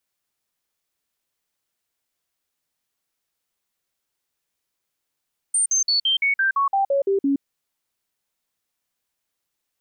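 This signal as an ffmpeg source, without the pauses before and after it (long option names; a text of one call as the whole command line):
ffmpeg -f lavfi -i "aevalsrc='0.15*clip(min(mod(t,0.17),0.12-mod(t,0.17))/0.005,0,1)*sin(2*PI*8890*pow(2,-floor(t/0.17)/2)*mod(t,0.17))':duration=1.87:sample_rate=44100" out.wav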